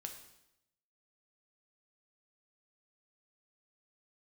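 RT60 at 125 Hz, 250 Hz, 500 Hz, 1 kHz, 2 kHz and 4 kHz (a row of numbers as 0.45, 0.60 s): 0.95, 0.90, 0.85, 0.80, 0.80, 0.80 s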